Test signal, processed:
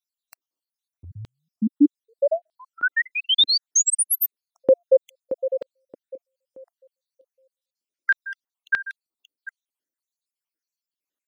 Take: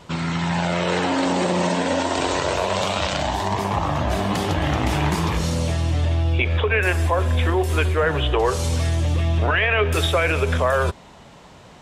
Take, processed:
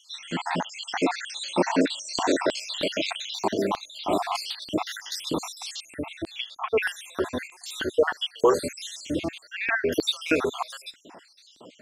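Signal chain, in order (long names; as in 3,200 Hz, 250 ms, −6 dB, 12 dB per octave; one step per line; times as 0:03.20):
time-frequency cells dropped at random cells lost 67%
auto-filter high-pass square 1.6 Hz 290–4,000 Hz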